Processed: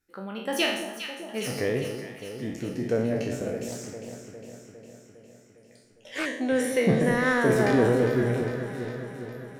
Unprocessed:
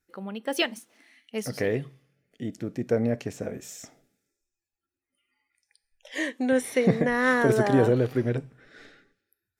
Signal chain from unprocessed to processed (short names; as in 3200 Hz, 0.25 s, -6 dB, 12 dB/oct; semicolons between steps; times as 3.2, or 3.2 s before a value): spectral trails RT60 0.64 s; in parallel at -11.5 dB: soft clip -23.5 dBFS, distortion -8 dB; on the sum: echo with dull and thin repeats by turns 0.203 s, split 1000 Hz, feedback 79%, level -7.5 dB; 3.68–6.26 Doppler distortion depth 0.23 ms; gain -3.5 dB